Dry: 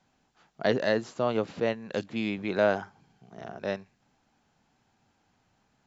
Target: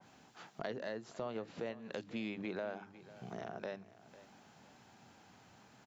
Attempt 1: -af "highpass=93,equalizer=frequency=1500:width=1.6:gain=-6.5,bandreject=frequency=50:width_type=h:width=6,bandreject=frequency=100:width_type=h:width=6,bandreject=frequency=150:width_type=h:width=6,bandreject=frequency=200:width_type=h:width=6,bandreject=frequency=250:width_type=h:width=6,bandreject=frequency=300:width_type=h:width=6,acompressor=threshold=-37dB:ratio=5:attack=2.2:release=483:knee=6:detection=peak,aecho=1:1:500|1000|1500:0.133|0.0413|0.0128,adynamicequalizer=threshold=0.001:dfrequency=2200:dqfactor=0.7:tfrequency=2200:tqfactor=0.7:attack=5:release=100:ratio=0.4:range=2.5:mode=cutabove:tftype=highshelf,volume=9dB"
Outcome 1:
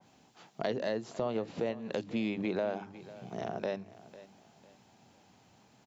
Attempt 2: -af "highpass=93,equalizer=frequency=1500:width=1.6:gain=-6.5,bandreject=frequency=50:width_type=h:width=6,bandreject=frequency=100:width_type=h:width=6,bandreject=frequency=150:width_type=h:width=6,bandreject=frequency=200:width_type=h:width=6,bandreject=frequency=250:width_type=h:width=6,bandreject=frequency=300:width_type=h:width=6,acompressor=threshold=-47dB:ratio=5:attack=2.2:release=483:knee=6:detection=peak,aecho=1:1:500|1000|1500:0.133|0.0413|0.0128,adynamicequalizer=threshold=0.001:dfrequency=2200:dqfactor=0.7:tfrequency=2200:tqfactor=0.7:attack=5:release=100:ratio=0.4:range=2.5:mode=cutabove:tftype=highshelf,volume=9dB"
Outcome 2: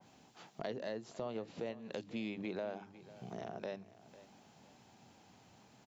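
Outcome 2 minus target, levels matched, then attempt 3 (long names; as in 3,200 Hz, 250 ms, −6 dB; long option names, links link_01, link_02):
2,000 Hz band −3.0 dB
-af "highpass=93,bandreject=frequency=50:width_type=h:width=6,bandreject=frequency=100:width_type=h:width=6,bandreject=frequency=150:width_type=h:width=6,bandreject=frequency=200:width_type=h:width=6,bandreject=frequency=250:width_type=h:width=6,bandreject=frequency=300:width_type=h:width=6,acompressor=threshold=-47dB:ratio=5:attack=2.2:release=483:knee=6:detection=peak,aecho=1:1:500|1000|1500:0.133|0.0413|0.0128,adynamicequalizer=threshold=0.001:dfrequency=2200:dqfactor=0.7:tfrequency=2200:tqfactor=0.7:attack=5:release=100:ratio=0.4:range=2.5:mode=cutabove:tftype=highshelf,volume=9dB"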